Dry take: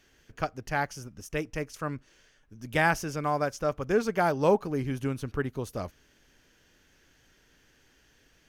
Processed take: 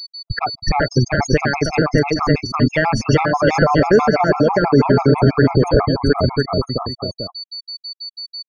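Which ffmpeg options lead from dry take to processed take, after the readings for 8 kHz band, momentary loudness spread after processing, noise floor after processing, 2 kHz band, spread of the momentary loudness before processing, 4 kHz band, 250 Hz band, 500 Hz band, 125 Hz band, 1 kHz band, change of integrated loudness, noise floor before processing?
+10.0 dB, 15 LU, under -85 dBFS, +11.5 dB, 12 LU, +20.5 dB, +16.5 dB, +14.0 dB, +18.0 dB, +12.5 dB, +13.0 dB, -64 dBFS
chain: -filter_complex "[0:a]afftfilt=real='re*gte(hypot(re,im),0.0158)':imag='im*gte(hypot(re,im),0.0158)':win_size=1024:overlap=0.75,highshelf=f=3900:g=-11,acrossover=split=130|4300[s0][s1][s2];[s2]aeval=exprs='clip(val(0),-1,0.00211)':c=same[s3];[s0][s1][s3]amix=inputs=3:normalize=0,acompressor=threshold=0.0112:ratio=3,lowshelf=f=92:g=-3,aeval=exprs='val(0)+0.000794*sin(2*PI*4500*n/s)':c=same,asplit=2[s4][s5];[s5]aecho=0:1:390|721.5|1003|1243|1446:0.631|0.398|0.251|0.158|0.1[s6];[s4][s6]amix=inputs=2:normalize=0,aresample=22050,aresample=44100,alimiter=level_in=56.2:limit=0.891:release=50:level=0:latency=1,afftfilt=real='re*gt(sin(2*PI*6.1*pts/sr)*(1-2*mod(floor(b*sr/1024/680),2)),0)':imag='im*gt(sin(2*PI*6.1*pts/sr)*(1-2*mod(floor(b*sr/1024/680),2)),0)':win_size=1024:overlap=0.75,volume=0.841"

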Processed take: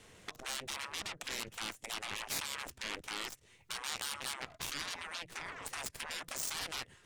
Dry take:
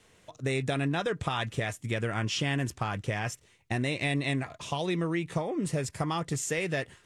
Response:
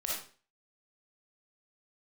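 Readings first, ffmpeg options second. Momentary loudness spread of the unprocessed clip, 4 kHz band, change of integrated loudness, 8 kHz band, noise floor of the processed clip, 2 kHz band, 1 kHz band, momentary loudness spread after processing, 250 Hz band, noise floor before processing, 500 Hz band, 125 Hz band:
5 LU, -2.0 dB, -9.0 dB, -1.0 dB, -65 dBFS, -7.5 dB, -9.5 dB, 5 LU, -22.5 dB, -62 dBFS, -18.5 dB, -27.0 dB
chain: -af "acompressor=threshold=0.00355:ratio=2.5,aeval=exprs='0.0266*(cos(1*acos(clip(val(0)/0.0266,-1,1)))-cos(1*PI/2))+0.000596*(cos(5*acos(clip(val(0)/0.0266,-1,1)))-cos(5*PI/2))+0.00119*(cos(6*acos(clip(val(0)/0.0266,-1,1)))-cos(6*PI/2))+0.00531*(cos(7*acos(clip(val(0)/0.0266,-1,1)))-cos(7*PI/2))':c=same,afftfilt=real='re*lt(hypot(re,im),0.00708)':imag='im*lt(hypot(re,im),0.00708)':win_size=1024:overlap=0.75,volume=5.31"

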